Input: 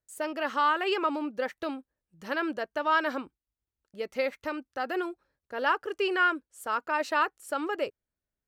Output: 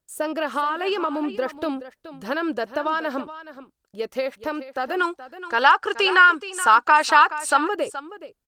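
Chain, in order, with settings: peaking EQ 2.1 kHz -6 dB 0.49 oct; hard clipper -16 dBFS, distortion -46 dB; compression 10:1, threshold -29 dBFS, peak gain reduction 9 dB; 5.00–7.57 s: time-frequency box 760–9400 Hz +11 dB; 3.20–5.79 s: bass shelf 290 Hz -4 dB; delay 424 ms -14 dB; trim +9 dB; Opus 24 kbps 48 kHz

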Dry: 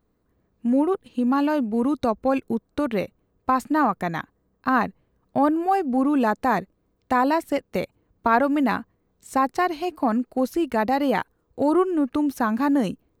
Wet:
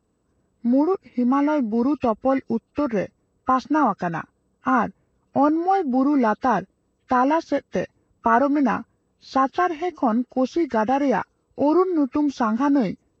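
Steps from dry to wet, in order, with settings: knee-point frequency compression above 1.2 kHz 1.5:1; high-pass 53 Hz; trim +1.5 dB

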